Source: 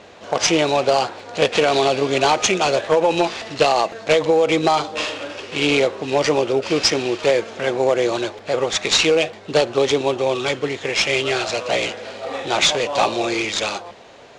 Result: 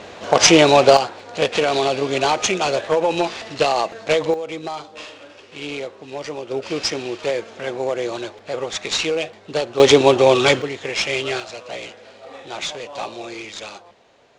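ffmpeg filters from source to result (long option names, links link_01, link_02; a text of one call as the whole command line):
ffmpeg -i in.wav -af "asetnsamples=nb_out_samples=441:pad=0,asendcmd='0.97 volume volume -2dB;4.34 volume volume -12dB;6.51 volume volume -5.5dB;9.8 volume volume 7dB;10.62 volume volume -3dB;11.4 volume volume -11dB',volume=6dB" out.wav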